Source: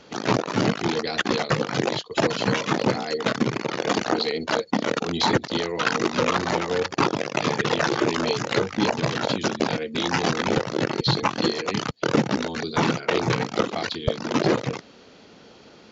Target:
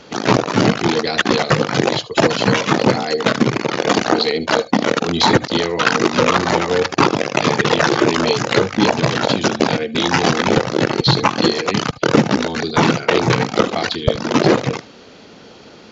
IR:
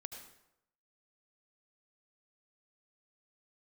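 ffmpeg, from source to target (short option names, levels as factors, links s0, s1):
-filter_complex "[0:a]asplit=2[s0][s1];[1:a]atrim=start_sample=2205,atrim=end_sample=3528[s2];[s1][s2]afir=irnorm=-1:irlink=0,volume=1.58[s3];[s0][s3]amix=inputs=2:normalize=0,volume=1.26"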